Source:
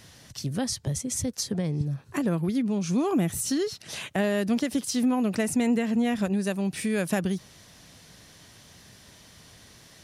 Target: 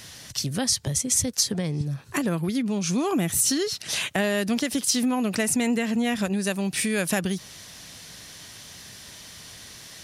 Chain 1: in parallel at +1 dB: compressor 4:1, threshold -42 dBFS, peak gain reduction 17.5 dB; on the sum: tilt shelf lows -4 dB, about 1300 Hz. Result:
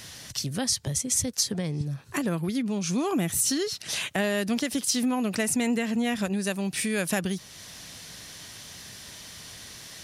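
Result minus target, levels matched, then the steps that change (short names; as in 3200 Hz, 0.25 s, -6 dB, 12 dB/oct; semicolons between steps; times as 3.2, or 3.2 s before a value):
compressor: peak gain reduction +9 dB
change: compressor 4:1, threshold -30 dBFS, peak gain reduction 8.5 dB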